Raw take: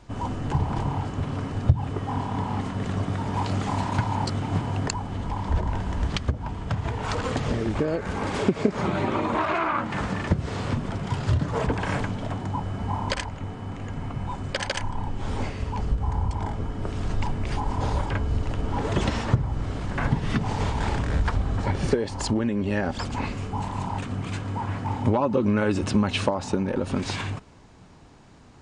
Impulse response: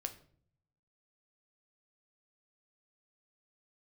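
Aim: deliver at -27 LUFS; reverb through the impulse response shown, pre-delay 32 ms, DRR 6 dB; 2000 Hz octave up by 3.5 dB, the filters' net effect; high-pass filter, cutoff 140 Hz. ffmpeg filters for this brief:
-filter_complex "[0:a]highpass=140,equalizer=f=2k:t=o:g=4.5,asplit=2[a][b];[1:a]atrim=start_sample=2205,adelay=32[c];[b][c]afir=irnorm=-1:irlink=0,volume=-4.5dB[d];[a][d]amix=inputs=2:normalize=0,volume=0.5dB"

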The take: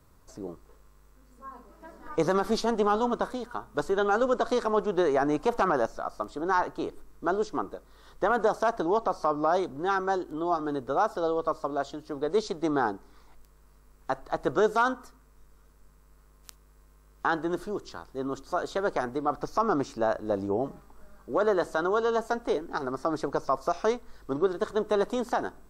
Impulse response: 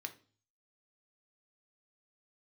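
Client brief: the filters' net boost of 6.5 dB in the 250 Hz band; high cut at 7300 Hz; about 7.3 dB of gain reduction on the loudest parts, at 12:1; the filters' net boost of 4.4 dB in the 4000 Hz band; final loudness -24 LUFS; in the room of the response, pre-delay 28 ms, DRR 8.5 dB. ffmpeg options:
-filter_complex "[0:a]lowpass=7.3k,equalizer=f=250:t=o:g=8.5,equalizer=f=4k:t=o:g=5.5,acompressor=threshold=-24dB:ratio=12,asplit=2[a][b];[1:a]atrim=start_sample=2205,adelay=28[c];[b][c]afir=irnorm=-1:irlink=0,volume=-6.5dB[d];[a][d]amix=inputs=2:normalize=0,volume=6.5dB"

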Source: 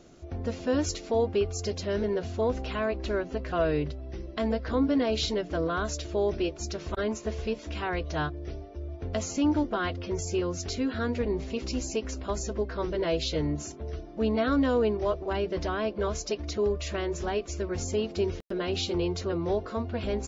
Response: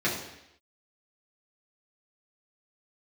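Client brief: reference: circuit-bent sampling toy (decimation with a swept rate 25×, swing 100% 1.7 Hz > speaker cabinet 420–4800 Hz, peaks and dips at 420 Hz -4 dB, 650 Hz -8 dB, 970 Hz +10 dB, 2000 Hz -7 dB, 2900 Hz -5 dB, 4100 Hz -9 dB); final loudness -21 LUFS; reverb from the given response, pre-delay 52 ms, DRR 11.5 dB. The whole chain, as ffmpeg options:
-filter_complex "[0:a]asplit=2[a][b];[1:a]atrim=start_sample=2205,adelay=52[c];[b][c]afir=irnorm=-1:irlink=0,volume=-23.5dB[d];[a][d]amix=inputs=2:normalize=0,acrusher=samples=25:mix=1:aa=0.000001:lfo=1:lforange=25:lforate=1.7,highpass=420,equalizer=f=420:t=q:w=4:g=-4,equalizer=f=650:t=q:w=4:g=-8,equalizer=f=970:t=q:w=4:g=10,equalizer=f=2k:t=q:w=4:g=-7,equalizer=f=2.9k:t=q:w=4:g=-5,equalizer=f=4.1k:t=q:w=4:g=-9,lowpass=f=4.8k:w=0.5412,lowpass=f=4.8k:w=1.3066,volume=12dB"

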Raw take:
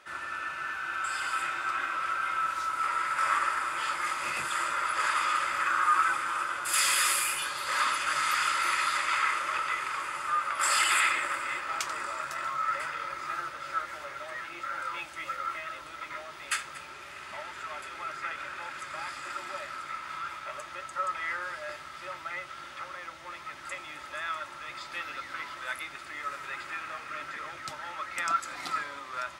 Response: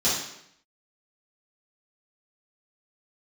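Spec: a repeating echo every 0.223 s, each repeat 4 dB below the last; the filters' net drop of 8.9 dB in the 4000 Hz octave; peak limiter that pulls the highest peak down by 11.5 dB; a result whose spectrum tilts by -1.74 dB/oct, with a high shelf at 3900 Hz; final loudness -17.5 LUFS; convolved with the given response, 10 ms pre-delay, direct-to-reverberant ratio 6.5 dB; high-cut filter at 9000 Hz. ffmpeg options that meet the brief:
-filter_complex "[0:a]lowpass=9k,highshelf=f=3.9k:g=-8,equalizer=f=4k:t=o:g=-7,alimiter=level_in=2.5dB:limit=-24dB:level=0:latency=1,volume=-2.5dB,aecho=1:1:223|446|669|892|1115|1338|1561|1784|2007:0.631|0.398|0.25|0.158|0.0994|0.0626|0.0394|0.0249|0.0157,asplit=2[a][b];[1:a]atrim=start_sample=2205,adelay=10[c];[b][c]afir=irnorm=-1:irlink=0,volume=-20dB[d];[a][d]amix=inputs=2:normalize=0,volume=16dB"

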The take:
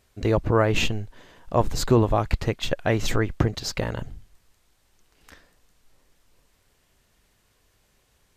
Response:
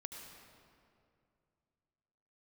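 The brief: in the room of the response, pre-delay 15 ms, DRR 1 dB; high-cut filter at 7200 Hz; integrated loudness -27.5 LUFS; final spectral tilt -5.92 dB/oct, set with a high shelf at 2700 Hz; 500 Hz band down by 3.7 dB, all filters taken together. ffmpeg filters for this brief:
-filter_complex "[0:a]lowpass=7.2k,equalizer=f=500:t=o:g=-4.5,highshelf=f=2.7k:g=-5.5,asplit=2[a][b];[1:a]atrim=start_sample=2205,adelay=15[c];[b][c]afir=irnorm=-1:irlink=0,volume=2dB[d];[a][d]amix=inputs=2:normalize=0,volume=-3.5dB"

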